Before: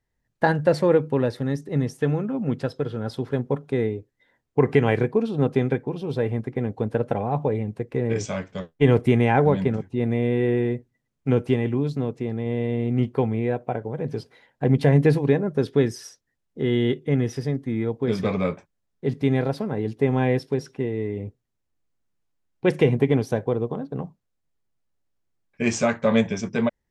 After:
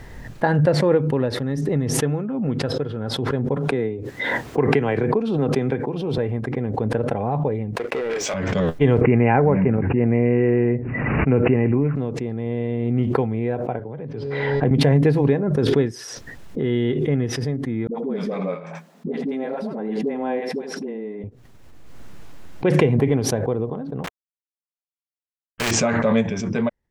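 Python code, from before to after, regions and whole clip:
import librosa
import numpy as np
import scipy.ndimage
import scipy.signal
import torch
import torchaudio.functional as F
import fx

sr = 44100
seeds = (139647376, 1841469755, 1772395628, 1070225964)

y = fx.chain(x, sr, fx.highpass(hz=150.0, slope=6),
    fx.band_squash(depth_pct=40), at=(3.57, 6.18))
y = fx.chain(y, sr, fx.highpass(hz=560.0, slope=12),
    fx.leveller(passes=3), at=(7.76, 8.34))
y = fx.chain(y, sr, fx.highpass(hz=58.0, slope=12),
    fx.resample_bad(factor=8, down='none', up='filtered'),
    fx.env_flatten(amount_pct=50), at=(9.01, 11.96))
y = fx.chain(y, sr, fx.lowpass(hz=3700.0, slope=12),
    fx.comb_fb(f0_hz=140.0, decay_s=1.1, harmonics='all', damping=0.0, mix_pct=50),
    fx.band_squash(depth_pct=70), at=(13.79, 14.71))
y = fx.chain(y, sr, fx.cheby_ripple_highpass(hz=160.0, ripple_db=6),
    fx.dispersion(late='highs', ms=81.0, hz=450.0),
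    fx.echo_single(ms=84, db=-14.0), at=(17.87, 21.24))
y = fx.chain(y, sr, fx.leveller(passes=1),
    fx.sample_gate(floor_db=-36.0),
    fx.spectral_comp(ratio=4.0), at=(24.04, 25.71))
y = fx.high_shelf(y, sr, hz=4400.0, db=-10.0)
y = fx.pre_swell(y, sr, db_per_s=26.0)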